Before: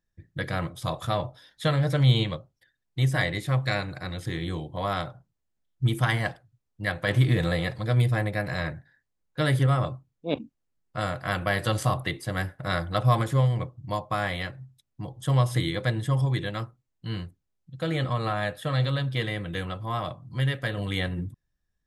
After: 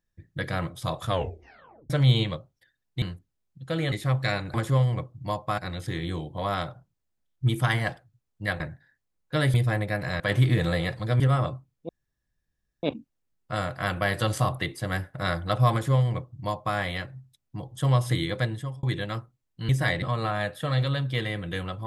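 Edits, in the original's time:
1.06 s: tape stop 0.84 s
3.02–3.35 s: swap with 17.14–18.04 s
6.99–7.99 s: swap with 8.65–9.59 s
10.28 s: insert room tone 0.94 s
13.17–14.21 s: copy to 3.97 s
15.85–16.28 s: fade out

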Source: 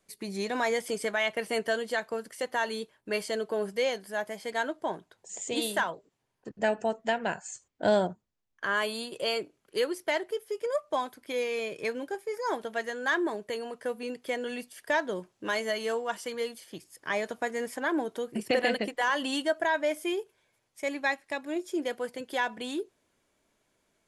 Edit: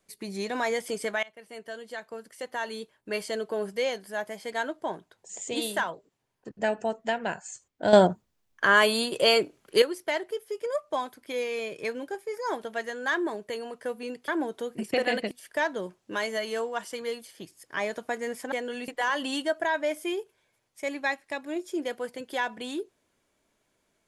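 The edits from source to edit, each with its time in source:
1.23–3.29 s: fade in, from -22 dB
7.93–9.82 s: gain +9 dB
14.28–14.64 s: swap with 17.85–18.88 s

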